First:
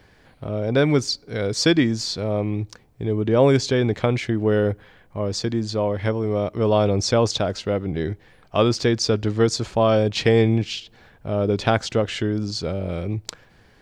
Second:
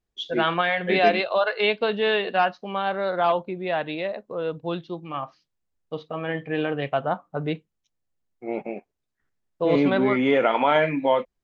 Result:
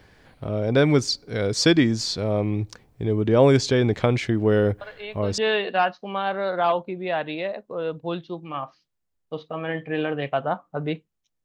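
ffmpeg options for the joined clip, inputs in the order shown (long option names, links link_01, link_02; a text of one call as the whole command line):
ffmpeg -i cue0.wav -i cue1.wav -filter_complex "[1:a]asplit=2[link_01][link_02];[0:a]apad=whole_dur=11.44,atrim=end=11.44,atrim=end=5.382[link_03];[link_02]atrim=start=1.978:end=8.04[link_04];[link_01]atrim=start=1.41:end=1.98,asetpts=PTS-STARTPTS,volume=-14.5dB,afade=type=in:duration=0.004:curve=hsin,afade=type=out:start_time=0.566:duration=0.004:curve=hsin,adelay=212121S[link_05];[link_03][link_04]acrossfade=duration=0.004:curve1=hsin:curve2=hsin[link_06];[link_06][link_05]amix=inputs=2:normalize=0" out.wav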